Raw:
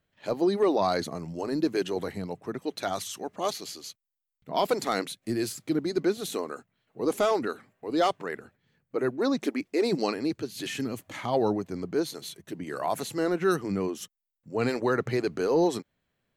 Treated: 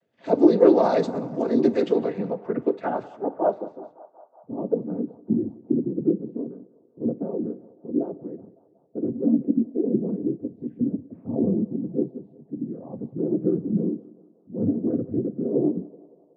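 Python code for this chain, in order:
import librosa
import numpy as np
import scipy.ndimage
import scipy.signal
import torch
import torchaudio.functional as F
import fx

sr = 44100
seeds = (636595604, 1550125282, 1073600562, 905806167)

y = fx.graphic_eq_10(x, sr, hz=(250, 500, 4000), db=(10, 10, -5))
y = fx.noise_vocoder(y, sr, seeds[0], bands=16)
y = fx.filter_sweep_lowpass(y, sr, from_hz=5200.0, to_hz=220.0, start_s=1.72, end_s=4.83, q=1.1)
y = fx.echo_banded(y, sr, ms=186, feedback_pct=76, hz=880.0, wet_db=-18.0)
y = fx.rev_double_slope(y, sr, seeds[1], early_s=0.27, late_s=1.5, knee_db=-18, drr_db=12.5)
y = y * 10.0 ** (-2.0 / 20.0)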